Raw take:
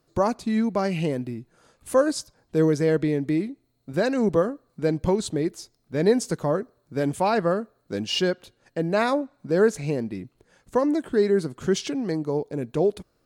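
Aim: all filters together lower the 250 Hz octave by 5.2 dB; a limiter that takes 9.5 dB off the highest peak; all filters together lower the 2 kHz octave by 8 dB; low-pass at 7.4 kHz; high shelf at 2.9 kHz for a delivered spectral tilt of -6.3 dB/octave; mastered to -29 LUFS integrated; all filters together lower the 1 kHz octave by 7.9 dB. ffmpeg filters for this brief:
-af "lowpass=7400,equalizer=f=250:t=o:g=-6.5,equalizer=f=1000:t=o:g=-8.5,equalizer=f=2000:t=o:g=-4,highshelf=f=2900:g=-8.5,volume=1.5,alimiter=limit=0.119:level=0:latency=1"

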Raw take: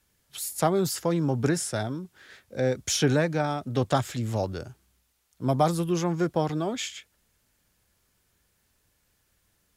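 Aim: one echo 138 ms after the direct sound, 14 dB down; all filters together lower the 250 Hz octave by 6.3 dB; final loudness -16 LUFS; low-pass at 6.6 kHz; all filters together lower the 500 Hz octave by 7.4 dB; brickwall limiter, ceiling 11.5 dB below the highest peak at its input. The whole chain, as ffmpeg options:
-af "lowpass=6600,equalizer=f=250:t=o:g=-7.5,equalizer=f=500:t=o:g=-7.5,alimiter=limit=0.0631:level=0:latency=1,aecho=1:1:138:0.2,volume=8.91"

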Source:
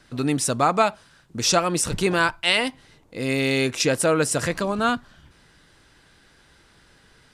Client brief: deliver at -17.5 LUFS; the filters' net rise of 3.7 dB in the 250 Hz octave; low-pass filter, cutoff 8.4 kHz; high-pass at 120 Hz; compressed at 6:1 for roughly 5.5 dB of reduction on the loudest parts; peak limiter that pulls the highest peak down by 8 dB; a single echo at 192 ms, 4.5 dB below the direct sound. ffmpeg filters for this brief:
-af "highpass=120,lowpass=8400,equalizer=f=250:t=o:g=5,acompressor=threshold=0.1:ratio=6,alimiter=limit=0.126:level=0:latency=1,aecho=1:1:192:0.596,volume=3.16"

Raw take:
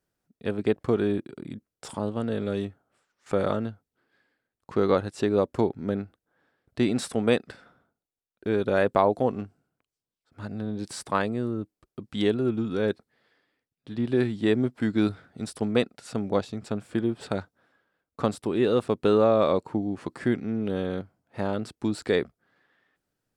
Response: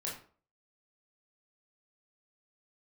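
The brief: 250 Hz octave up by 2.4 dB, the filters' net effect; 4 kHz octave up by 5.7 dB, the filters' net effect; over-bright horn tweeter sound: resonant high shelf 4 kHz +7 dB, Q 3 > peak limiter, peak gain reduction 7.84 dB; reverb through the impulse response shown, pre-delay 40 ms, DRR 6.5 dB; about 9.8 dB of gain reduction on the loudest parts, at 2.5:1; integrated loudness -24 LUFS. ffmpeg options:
-filter_complex "[0:a]equalizer=f=250:t=o:g=3,equalizer=f=4000:t=o:g=3.5,acompressor=threshold=0.0282:ratio=2.5,asplit=2[s0][s1];[1:a]atrim=start_sample=2205,adelay=40[s2];[s1][s2]afir=irnorm=-1:irlink=0,volume=0.422[s3];[s0][s3]amix=inputs=2:normalize=0,highshelf=f=4000:t=q:w=3:g=7,volume=3.35,alimiter=limit=0.266:level=0:latency=1"

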